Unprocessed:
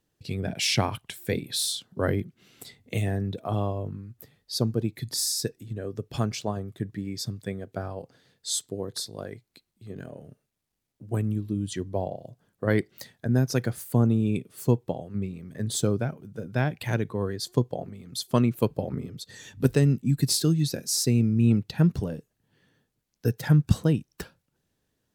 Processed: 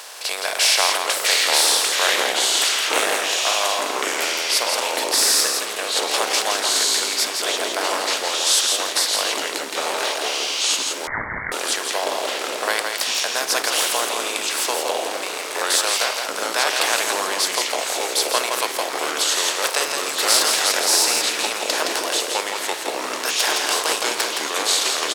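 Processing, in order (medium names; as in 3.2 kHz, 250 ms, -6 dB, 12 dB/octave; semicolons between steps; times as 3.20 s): spectral levelling over time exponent 0.4; high-pass 700 Hz 24 dB/octave; ever faster or slower copies 541 ms, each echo -3 st, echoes 3; delay 167 ms -5 dB; 11.07–11.52 s: frequency inversion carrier 2.5 kHz; trim +5 dB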